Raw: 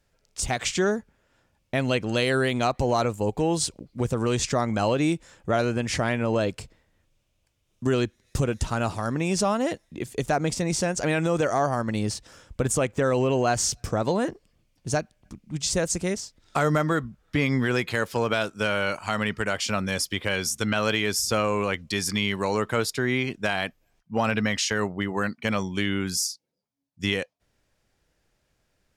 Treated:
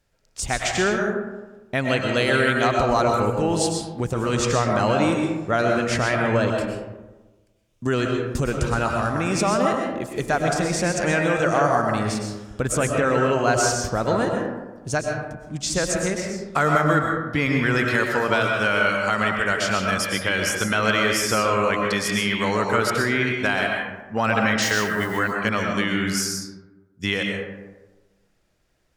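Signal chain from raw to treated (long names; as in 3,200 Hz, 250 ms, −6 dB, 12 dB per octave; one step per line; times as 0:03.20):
0:24.62–0:25.19: spike at every zero crossing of −30.5 dBFS
dynamic equaliser 1,500 Hz, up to +6 dB, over −41 dBFS, Q 1.3
comb and all-pass reverb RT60 1.2 s, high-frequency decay 0.4×, pre-delay 80 ms, DRR 1 dB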